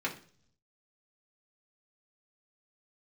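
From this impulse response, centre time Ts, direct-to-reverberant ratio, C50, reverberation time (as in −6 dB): 14 ms, −4.0 dB, 12.0 dB, 0.50 s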